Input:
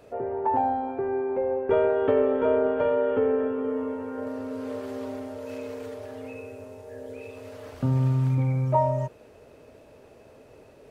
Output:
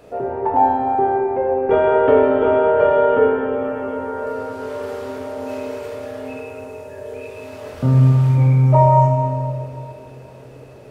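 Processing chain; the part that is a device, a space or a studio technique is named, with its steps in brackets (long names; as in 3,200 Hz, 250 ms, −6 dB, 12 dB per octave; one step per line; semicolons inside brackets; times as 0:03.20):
stairwell (convolution reverb RT60 2.6 s, pre-delay 13 ms, DRR −0.5 dB)
level +5.5 dB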